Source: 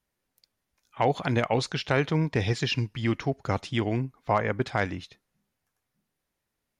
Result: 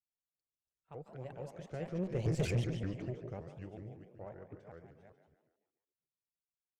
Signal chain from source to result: chunks repeated in reverse 198 ms, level -6.5 dB; Doppler pass-by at 2.47 s, 31 m/s, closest 3.9 m; treble shelf 2.2 kHz -9.5 dB; comb 5.6 ms, depth 33%; frequency-shifting echo 145 ms, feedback 48%, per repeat +54 Hz, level -9 dB; valve stage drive 30 dB, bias 0.6; graphic EQ 125/250/500/1000/2000/4000/8000 Hz +4/-8/+5/-10/-3/-11/+4 dB; vibrato with a chosen wave saw up 5.3 Hz, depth 250 cents; trim +2.5 dB

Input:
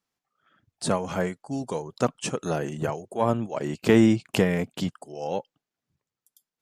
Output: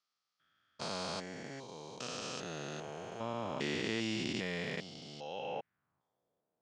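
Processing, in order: spectrogram pixelated in time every 400 ms; band-pass sweep 4.8 kHz -> 590 Hz, 5.17–6.24 s; RIAA curve playback; trim +14.5 dB

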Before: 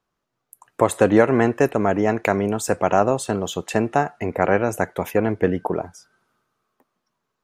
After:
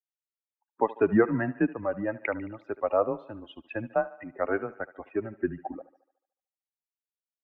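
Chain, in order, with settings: expander on every frequency bin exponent 2; mistuned SSB -110 Hz 290–2600 Hz; thinning echo 73 ms, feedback 58%, high-pass 280 Hz, level -17 dB; trim -3 dB

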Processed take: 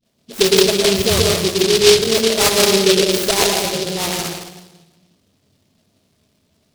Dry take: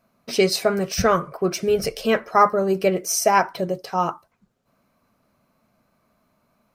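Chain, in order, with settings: peaking EQ 410 Hz +5.5 dB 0.66 oct; phase dispersion highs, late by 51 ms, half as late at 560 Hz; on a send at -2 dB: reverberation RT60 1.1 s, pre-delay 105 ms; on the sum: delay time shaken by noise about 3.8 kHz, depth 0.22 ms; trim -2 dB

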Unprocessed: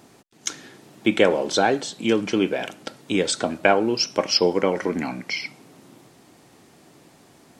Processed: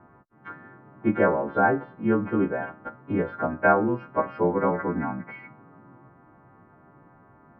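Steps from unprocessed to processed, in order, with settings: partials quantised in pitch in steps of 2 st; steep low-pass 1.4 kHz 36 dB/octave; peaking EQ 460 Hz -12 dB 2.7 oct; trim +8.5 dB

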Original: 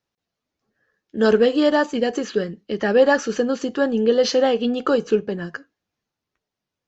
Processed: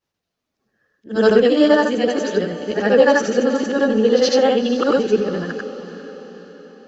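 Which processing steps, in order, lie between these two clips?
short-time spectra conjugated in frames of 194 ms; echo that smears into a reverb 458 ms, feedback 53%, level -13 dB; trim +6 dB

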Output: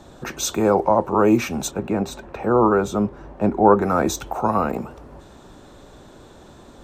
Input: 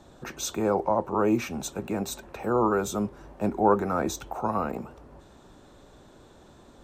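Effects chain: 1.71–3.82 s: low-pass 2.2 kHz 6 dB/octave; trim +7.5 dB

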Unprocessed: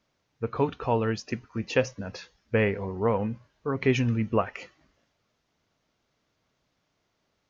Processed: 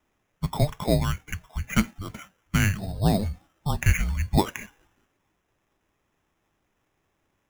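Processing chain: 0.99–2.89 s: dynamic bell 700 Hz, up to -4 dB, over -39 dBFS, Q 1.4; mistuned SSB -300 Hz 200–2900 Hz; sample-and-hold 10×; trim +4 dB

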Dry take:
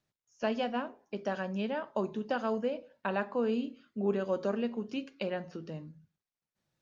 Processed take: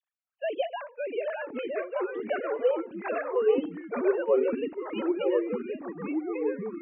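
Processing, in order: formants replaced by sine waves; ever faster or slower copies 508 ms, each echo -2 st, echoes 3; trim +2.5 dB

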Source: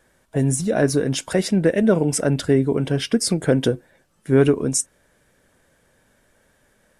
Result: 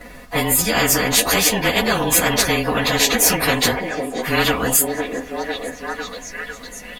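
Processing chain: frequency axis rescaled in octaves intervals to 108%; treble shelf 7.6 kHz -9 dB; comb 4.1 ms, depth 72%; repeats whose band climbs or falls 502 ms, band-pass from 430 Hz, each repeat 0.7 oct, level -10 dB; spectrum-flattening compressor 4:1; trim +3 dB

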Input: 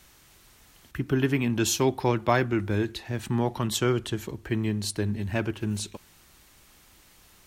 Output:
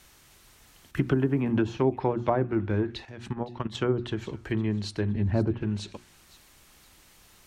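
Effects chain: 5.15–5.63 s: bass shelf 380 Hz +6.5 dB; low-pass that closes with the level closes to 800 Hz, closed at -19.5 dBFS; hum notches 60/120/180/240/300/360 Hz; 3.05–3.75 s: level held to a coarse grid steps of 14 dB; feedback echo behind a high-pass 513 ms, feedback 39%, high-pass 2.2 kHz, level -16.5 dB; 0.97–1.77 s: three bands compressed up and down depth 100%

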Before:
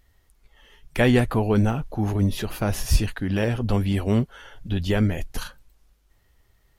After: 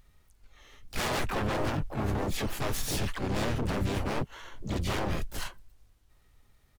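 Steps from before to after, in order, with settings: wavefolder -23 dBFS; harmony voices -7 st -2 dB, +4 st -6 dB, +12 st -6 dB; trim -5 dB

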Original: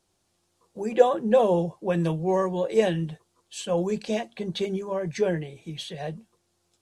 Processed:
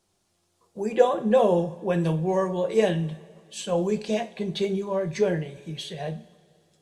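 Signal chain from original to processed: two-slope reverb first 0.35 s, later 2.6 s, from -20 dB, DRR 7.5 dB

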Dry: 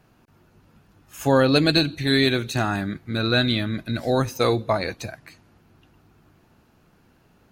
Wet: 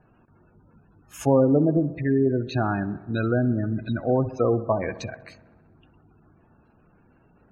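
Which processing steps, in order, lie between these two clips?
low-pass that closes with the level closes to 860 Hz, closed at -17 dBFS; spectral gate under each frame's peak -20 dB strong; feedback echo behind a low-pass 64 ms, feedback 71%, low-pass 1.5 kHz, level -16 dB

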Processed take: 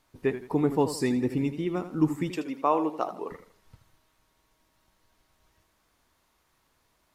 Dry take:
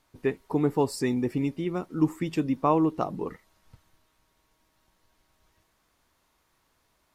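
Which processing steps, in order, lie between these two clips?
2.31–3.31 s: high-pass 410 Hz 12 dB/octave; modulated delay 81 ms, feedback 35%, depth 104 cents, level -11.5 dB

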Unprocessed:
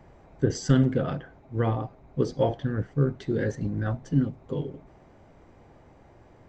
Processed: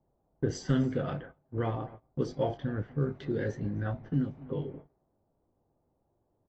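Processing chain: doubling 20 ms -12 dB; level-controlled noise filter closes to 940 Hz, open at -22.5 dBFS; on a send: delay 252 ms -22.5 dB; on the sum: resampled via 22.05 kHz; bass shelf 100 Hz -3.5 dB; level-controlled noise filter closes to 1.2 kHz, open at -19 dBFS; gate -43 dBFS, range -19 dB; in parallel at 0 dB: compression 16:1, threshold -31 dBFS, peak gain reduction 16.5 dB; on the sum: trim -7.5 dB; AAC 32 kbps 32 kHz

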